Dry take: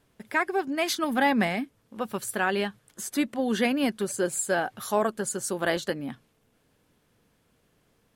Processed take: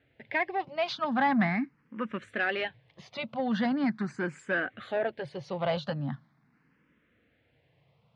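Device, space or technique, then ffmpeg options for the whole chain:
barber-pole phaser into a guitar amplifier: -filter_complex "[0:a]asplit=2[s0][s1];[s1]afreqshift=0.41[s2];[s0][s2]amix=inputs=2:normalize=1,asoftclip=type=tanh:threshold=0.0794,highpass=77,equalizer=f=140:t=q:w=4:g=9,equalizer=f=400:t=q:w=4:g=-8,equalizer=f=2000:t=q:w=4:g=5,equalizer=f=3300:t=q:w=4:g=-3,lowpass=f=3700:w=0.5412,lowpass=f=3700:w=1.3066,volume=1.33"

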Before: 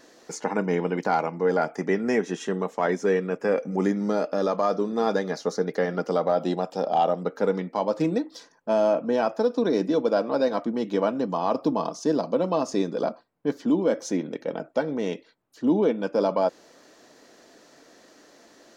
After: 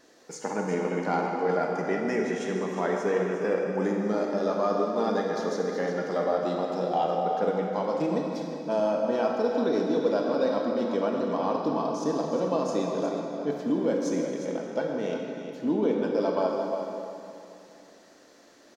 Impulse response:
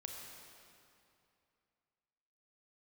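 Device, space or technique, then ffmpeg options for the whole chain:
cave: -filter_complex "[0:a]aecho=1:1:359:0.335[s0];[1:a]atrim=start_sample=2205[s1];[s0][s1]afir=irnorm=-1:irlink=0"

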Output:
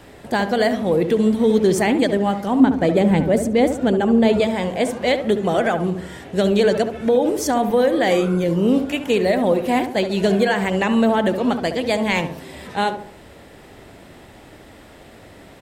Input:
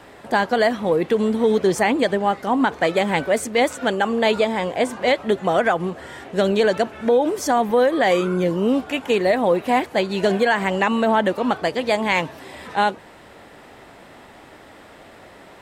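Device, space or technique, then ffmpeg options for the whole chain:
smiley-face EQ: -filter_complex "[0:a]lowshelf=f=140:g=7.5,equalizer=f=1100:t=o:w=1.6:g=-5.5,highshelf=f=9200:g=4.5,asettb=1/sr,asplit=3[s0][s1][s2];[s0]atrim=end=2.604[s3];[s1]atrim=start=2.6:end=4.4,asetpts=PTS-STARTPTS,afade=t=in:d=0.004:c=qsin,afade=t=out:st=1.796:d=0.004:c=qsin,tiltshelf=f=720:g=6.5[s4];[s2]atrim=start=4.396[s5];[s3][s4]acrossfade=d=0.004:c1=hsin:c2=qsin[s6];[s6][s5]acrossfade=d=0.004:c1=qsin:c2=hsin,asplit=2[s7][s8];[s8]adelay=70,lowpass=f=1100:p=1,volume=0.447,asplit=2[s9][s10];[s10]adelay=70,lowpass=f=1100:p=1,volume=0.49,asplit=2[s11][s12];[s12]adelay=70,lowpass=f=1100:p=1,volume=0.49,asplit=2[s13][s14];[s14]adelay=70,lowpass=f=1100:p=1,volume=0.49,asplit=2[s15][s16];[s16]adelay=70,lowpass=f=1100:p=1,volume=0.49,asplit=2[s17][s18];[s18]adelay=70,lowpass=f=1100:p=1,volume=0.49[s19];[s7][s9][s11][s13][s15][s17][s19]amix=inputs=7:normalize=0,volume=1.12"

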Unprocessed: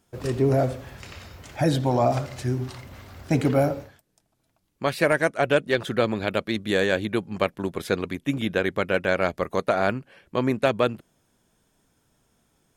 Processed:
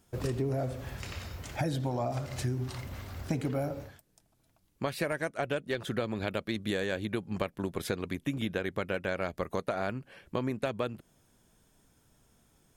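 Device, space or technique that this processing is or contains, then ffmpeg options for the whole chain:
ASMR close-microphone chain: -af "lowshelf=f=120:g=6,acompressor=threshold=0.0398:ratio=6,highshelf=f=7400:g=4,volume=0.891"

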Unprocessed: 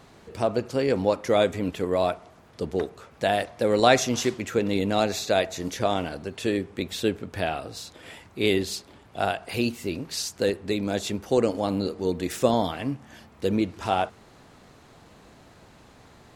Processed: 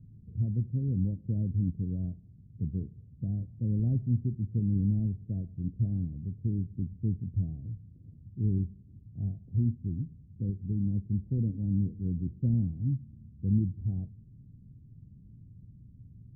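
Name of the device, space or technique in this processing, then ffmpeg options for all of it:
the neighbour's flat through the wall: -af "lowpass=f=190:w=0.5412,lowpass=f=190:w=1.3066,equalizer=f=110:t=o:w=0.67:g=7,volume=1.33"

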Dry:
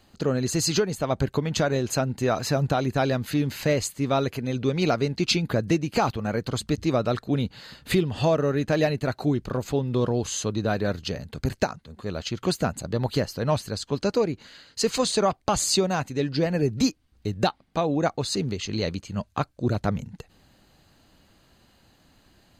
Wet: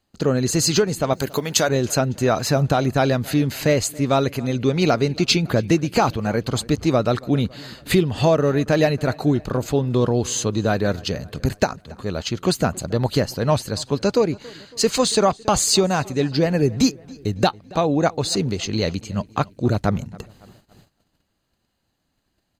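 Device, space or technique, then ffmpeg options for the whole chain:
exciter from parts: -filter_complex "[0:a]asettb=1/sr,asplit=3[s0][s1][s2];[s0]atrim=end=1.134[s3];[s1]atrim=start=1.13:end=1.69,asetpts=PTS-STARTPTS,afade=t=in:d=0.004:c=qsin,afade=t=out:st=0.556:d=0.004:c=qsin,aemphasis=mode=production:type=bsi[s4];[s2]atrim=start=1.686[s5];[s3][s4]acrossfade=d=0.004:c1=hsin:c2=qsin[s6];[s6][s5]acrossfade=d=0.004:c1=qsin:c2=hsin,asplit=2[s7][s8];[s8]adelay=278,lowpass=f=4600:p=1,volume=0.075,asplit=2[s9][s10];[s10]adelay=278,lowpass=f=4600:p=1,volume=0.54,asplit=2[s11][s12];[s12]adelay=278,lowpass=f=4600:p=1,volume=0.54,asplit=2[s13][s14];[s14]adelay=278,lowpass=f=4600:p=1,volume=0.54[s15];[s7][s9][s11][s13][s15]amix=inputs=5:normalize=0,asplit=2[s16][s17];[s17]highpass=4400,asoftclip=type=tanh:threshold=0.0251,volume=0.335[s18];[s16][s18]amix=inputs=2:normalize=0,agate=range=0.112:threshold=0.002:ratio=16:detection=peak,volume=1.78"

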